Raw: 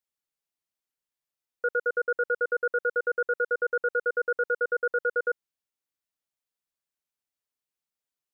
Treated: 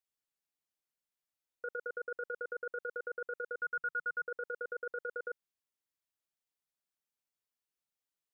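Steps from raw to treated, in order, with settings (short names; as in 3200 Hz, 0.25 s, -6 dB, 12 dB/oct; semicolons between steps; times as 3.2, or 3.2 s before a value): 3.6–4.28 EQ curve 160 Hz 0 dB, 650 Hz -24 dB, 1300 Hz -3 dB; negative-ratio compressor -30 dBFS, ratio -1; gain -7.5 dB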